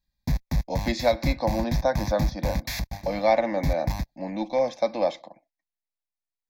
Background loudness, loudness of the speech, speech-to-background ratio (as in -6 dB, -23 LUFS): -30.5 LUFS, -27.0 LUFS, 3.5 dB